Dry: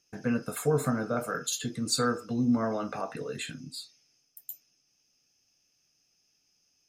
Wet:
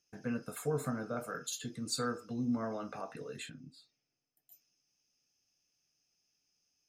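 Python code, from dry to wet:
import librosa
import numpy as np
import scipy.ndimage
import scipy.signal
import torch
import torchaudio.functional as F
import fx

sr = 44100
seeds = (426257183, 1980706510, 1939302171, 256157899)

y = fx.lowpass(x, sr, hz=1300.0, slope=6, at=(3.48, 4.51), fade=0.02)
y = y * librosa.db_to_amplitude(-8.0)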